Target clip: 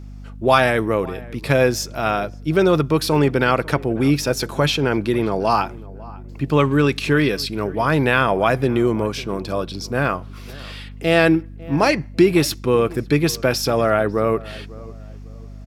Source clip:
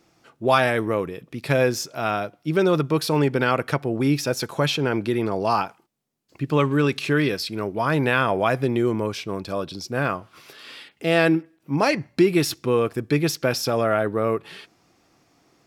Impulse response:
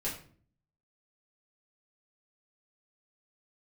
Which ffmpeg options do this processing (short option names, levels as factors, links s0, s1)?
-filter_complex "[0:a]aeval=exprs='val(0)+0.0126*(sin(2*PI*50*n/s)+sin(2*PI*2*50*n/s)/2+sin(2*PI*3*50*n/s)/3+sin(2*PI*4*50*n/s)/4+sin(2*PI*5*50*n/s)/5)':c=same,asplit=2[s0][s1];[s1]adelay=549,lowpass=f=1400:p=1,volume=0.1,asplit=2[s2][s3];[s3]adelay=549,lowpass=f=1400:p=1,volume=0.36,asplit=2[s4][s5];[s5]adelay=549,lowpass=f=1400:p=1,volume=0.36[s6];[s2][s4][s6]amix=inputs=3:normalize=0[s7];[s0][s7]amix=inputs=2:normalize=0,volume=1.5"